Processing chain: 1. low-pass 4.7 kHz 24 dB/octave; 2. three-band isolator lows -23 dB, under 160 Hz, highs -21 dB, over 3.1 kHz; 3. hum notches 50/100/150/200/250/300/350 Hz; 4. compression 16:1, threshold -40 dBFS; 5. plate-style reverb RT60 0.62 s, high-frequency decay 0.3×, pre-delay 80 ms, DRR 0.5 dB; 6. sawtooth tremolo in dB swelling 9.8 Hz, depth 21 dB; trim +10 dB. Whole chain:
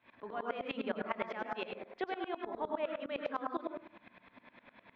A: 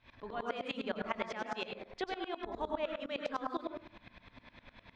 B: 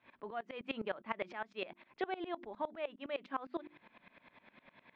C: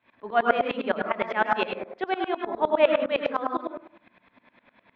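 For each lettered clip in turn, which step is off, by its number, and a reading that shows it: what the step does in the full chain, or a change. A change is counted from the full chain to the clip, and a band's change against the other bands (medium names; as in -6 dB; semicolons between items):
2, 4 kHz band +4.5 dB; 5, crest factor change +2.0 dB; 4, mean gain reduction 10.5 dB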